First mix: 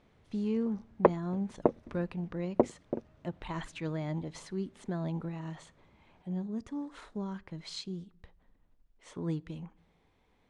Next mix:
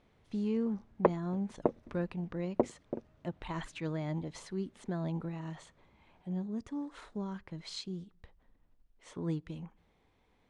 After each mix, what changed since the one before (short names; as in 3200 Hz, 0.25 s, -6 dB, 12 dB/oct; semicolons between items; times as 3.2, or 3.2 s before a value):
speech: send -7.5 dB; background -3.5 dB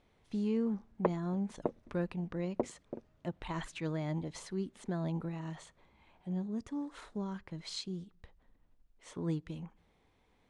background -5.0 dB; master: add high shelf 7700 Hz +5.5 dB